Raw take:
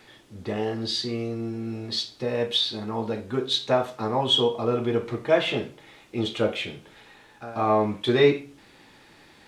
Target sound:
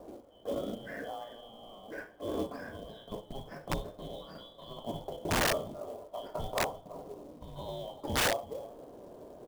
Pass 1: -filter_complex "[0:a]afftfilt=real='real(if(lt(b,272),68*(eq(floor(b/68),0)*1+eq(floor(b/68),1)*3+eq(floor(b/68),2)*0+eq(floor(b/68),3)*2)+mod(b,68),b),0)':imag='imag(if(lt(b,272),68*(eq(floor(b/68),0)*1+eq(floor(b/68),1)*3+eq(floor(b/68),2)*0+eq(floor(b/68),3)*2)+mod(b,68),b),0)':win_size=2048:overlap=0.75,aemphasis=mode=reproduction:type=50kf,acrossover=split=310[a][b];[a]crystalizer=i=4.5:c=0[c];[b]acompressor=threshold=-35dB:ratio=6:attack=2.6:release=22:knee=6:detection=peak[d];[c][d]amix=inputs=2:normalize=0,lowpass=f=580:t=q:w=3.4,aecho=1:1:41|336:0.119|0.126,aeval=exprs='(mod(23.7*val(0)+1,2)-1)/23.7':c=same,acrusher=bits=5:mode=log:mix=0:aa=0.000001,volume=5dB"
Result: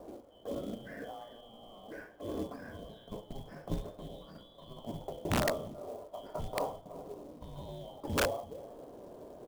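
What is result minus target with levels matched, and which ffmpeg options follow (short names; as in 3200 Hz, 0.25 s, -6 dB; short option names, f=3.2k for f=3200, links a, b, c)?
compressor: peak gain reduction +8.5 dB
-filter_complex "[0:a]afftfilt=real='real(if(lt(b,272),68*(eq(floor(b/68),0)*1+eq(floor(b/68),1)*3+eq(floor(b/68),2)*0+eq(floor(b/68),3)*2)+mod(b,68),b),0)':imag='imag(if(lt(b,272),68*(eq(floor(b/68),0)*1+eq(floor(b/68),1)*3+eq(floor(b/68),2)*0+eq(floor(b/68),3)*2)+mod(b,68),b),0)':win_size=2048:overlap=0.75,aemphasis=mode=reproduction:type=50kf,acrossover=split=310[a][b];[a]crystalizer=i=4.5:c=0[c];[b]acompressor=threshold=-24.5dB:ratio=6:attack=2.6:release=22:knee=6:detection=peak[d];[c][d]amix=inputs=2:normalize=0,lowpass=f=580:t=q:w=3.4,aecho=1:1:41|336:0.119|0.126,aeval=exprs='(mod(23.7*val(0)+1,2)-1)/23.7':c=same,acrusher=bits=5:mode=log:mix=0:aa=0.000001,volume=5dB"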